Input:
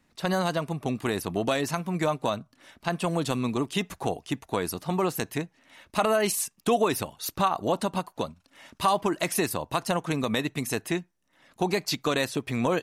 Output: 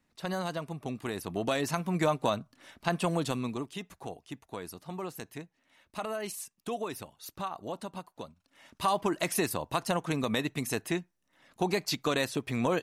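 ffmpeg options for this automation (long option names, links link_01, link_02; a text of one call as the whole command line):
ffmpeg -i in.wav -af "volume=8dB,afade=type=in:start_time=1.15:duration=0.76:silence=0.473151,afade=type=out:start_time=2.98:duration=0.78:silence=0.281838,afade=type=in:start_time=8.28:duration=0.81:silence=0.354813" out.wav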